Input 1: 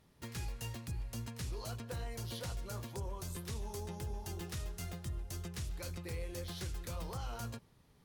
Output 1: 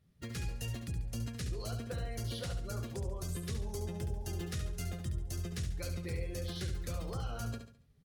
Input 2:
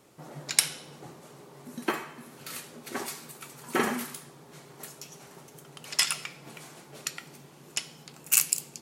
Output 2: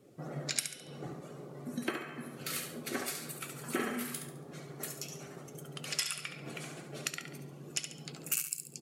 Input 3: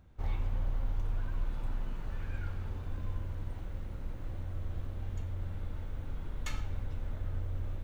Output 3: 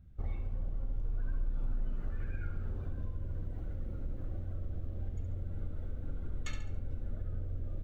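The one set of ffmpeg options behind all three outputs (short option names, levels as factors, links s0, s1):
-af "acompressor=threshold=0.0158:ratio=4,afftdn=nr=13:nf=-55,equalizer=f=930:w=4.2:g=-11.5,aecho=1:1:70|140|210|280:0.398|0.147|0.0545|0.0202,adynamicequalizer=threshold=0.001:dfrequency=6100:dqfactor=2.4:tfrequency=6100:tqfactor=2.4:attack=5:release=100:ratio=0.375:range=2:mode=cutabove:tftype=bell,volume=1.5"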